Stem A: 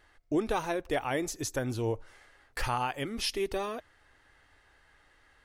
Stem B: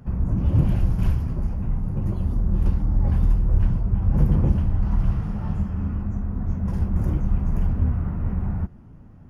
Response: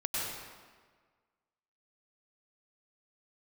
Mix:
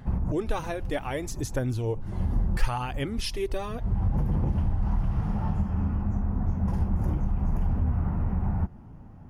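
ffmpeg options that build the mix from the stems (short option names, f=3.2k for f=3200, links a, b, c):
-filter_complex "[0:a]lowshelf=f=140:g=12,aphaser=in_gain=1:out_gain=1:delay=4.2:decay=0.36:speed=0.66:type=sinusoidal,volume=-2dB,asplit=2[a][b];[1:a]equalizer=f=830:t=o:w=0.55:g=7,alimiter=limit=-17dB:level=0:latency=1:release=119,volume=-0.5dB[c];[b]apad=whole_len=409796[d];[c][d]sidechaincompress=threshold=-47dB:ratio=8:attack=42:release=112[e];[a][e]amix=inputs=2:normalize=0"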